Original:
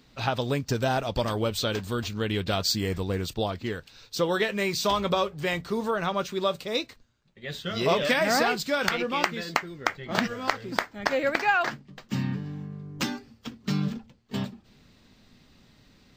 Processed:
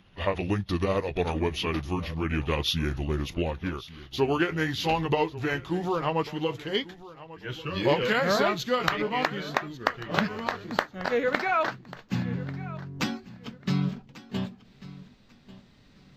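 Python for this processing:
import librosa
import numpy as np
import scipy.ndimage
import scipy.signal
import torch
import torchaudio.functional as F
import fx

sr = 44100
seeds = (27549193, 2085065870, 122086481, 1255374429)

p1 = fx.pitch_glide(x, sr, semitones=-5.5, runs='ending unshifted')
p2 = fx.high_shelf(p1, sr, hz=6800.0, db=-9.0)
p3 = p2 + fx.echo_feedback(p2, sr, ms=1142, feedback_pct=21, wet_db=-18.0, dry=0)
y = F.gain(torch.from_numpy(p3), 1.0).numpy()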